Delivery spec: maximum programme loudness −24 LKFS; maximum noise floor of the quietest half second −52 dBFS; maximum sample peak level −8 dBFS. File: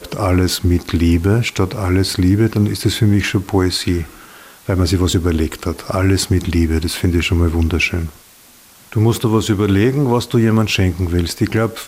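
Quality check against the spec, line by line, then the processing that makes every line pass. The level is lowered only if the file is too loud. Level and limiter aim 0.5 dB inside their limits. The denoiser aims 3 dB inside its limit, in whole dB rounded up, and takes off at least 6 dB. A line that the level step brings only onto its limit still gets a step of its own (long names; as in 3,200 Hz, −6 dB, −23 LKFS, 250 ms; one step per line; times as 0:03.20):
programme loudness −16.5 LKFS: out of spec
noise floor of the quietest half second −45 dBFS: out of spec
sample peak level −4.5 dBFS: out of spec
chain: level −8 dB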